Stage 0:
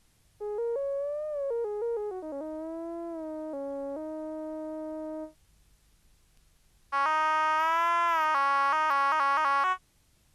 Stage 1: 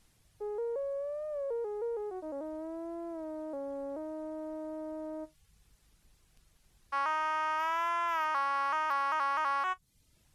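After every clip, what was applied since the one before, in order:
reverb reduction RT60 0.51 s
in parallel at −1.5 dB: downward compressor, threshold −37 dBFS, peak gain reduction 13.5 dB
on the sum: level −6 dB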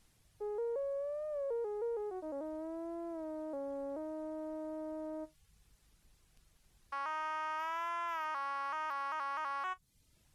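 brickwall limiter −28.5 dBFS, peak gain reduction 7 dB
level −2 dB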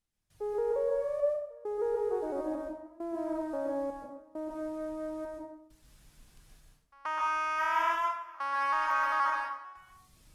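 gate pattern "..xxxxxx." 100 BPM −24 dB
dense smooth reverb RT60 0.71 s, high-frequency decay 0.75×, pre-delay 115 ms, DRR −2.5 dB
level +5 dB

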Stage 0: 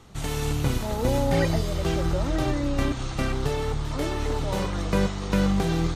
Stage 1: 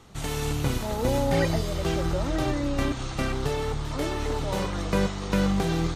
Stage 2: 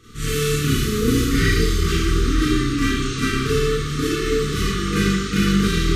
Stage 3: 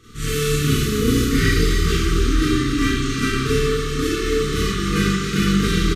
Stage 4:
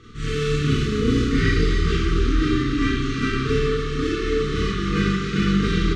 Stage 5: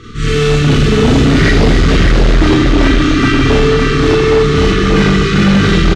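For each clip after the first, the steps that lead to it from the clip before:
low-shelf EQ 170 Hz −3 dB
four-comb reverb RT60 0.78 s, combs from 26 ms, DRR −9.5 dB; brick-wall band-stop 480–1,100 Hz
single-tap delay 272 ms −8.5 dB
reversed playback; upward compression, threshold −22 dBFS; reversed playback; high-frequency loss of the air 130 metres; level −1.5 dB
single-tap delay 583 ms −4 dB; sine wavefolder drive 9 dB, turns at −4.5 dBFS

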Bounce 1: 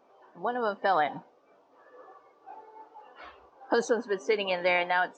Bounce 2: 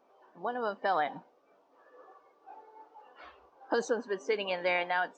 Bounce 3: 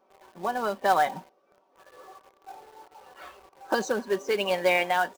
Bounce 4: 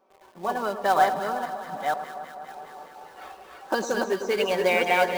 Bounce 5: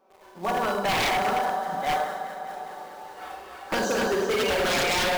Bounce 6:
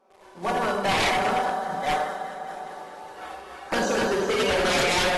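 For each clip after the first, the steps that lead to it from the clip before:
parametric band 110 Hz −12 dB 0.4 octaves; level −4 dB
comb filter 5.3 ms, depth 52%; in parallel at −3 dB: log-companded quantiser 4 bits
delay that plays each chunk backwards 485 ms, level −2.5 dB; delay that swaps between a low-pass and a high-pass 102 ms, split 1,300 Hz, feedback 86%, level −10 dB
four-comb reverb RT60 0.77 s, combs from 31 ms, DRR 0.5 dB; wave folding −20 dBFS; level +1 dB
AAC 32 kbit/s 32,000 Hz

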